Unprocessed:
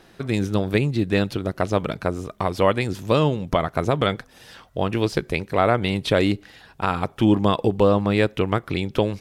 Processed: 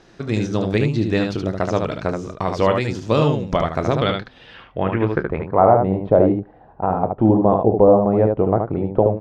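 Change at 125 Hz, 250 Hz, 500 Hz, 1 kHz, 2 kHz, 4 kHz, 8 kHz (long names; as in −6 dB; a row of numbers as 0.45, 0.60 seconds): +2.5 dB, +3.0 dB, +5.0 dB, +4.5 dB, −2.5 dB, −3.5 dB, can't be measured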